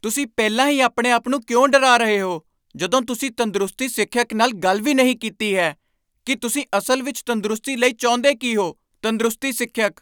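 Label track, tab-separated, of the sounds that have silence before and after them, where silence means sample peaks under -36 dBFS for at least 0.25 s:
2.750000	5.730000	sound
6.270000	8.720000	sound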